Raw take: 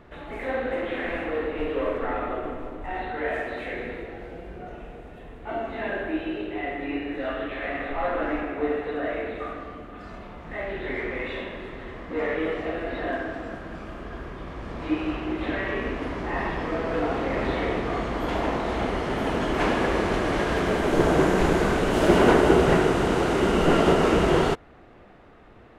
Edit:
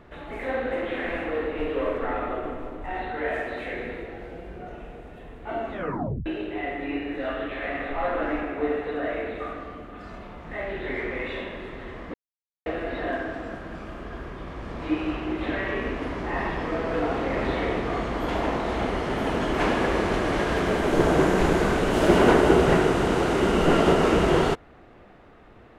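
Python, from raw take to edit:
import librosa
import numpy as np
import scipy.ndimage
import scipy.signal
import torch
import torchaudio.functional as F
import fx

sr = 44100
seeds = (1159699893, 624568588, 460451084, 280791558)

y = fx.edit(x, sr, fx.tape_stop(start_s=5.71, length_s=0.55),
    fx.silence(start_s=12.14, length_s=0.52), tone=tone)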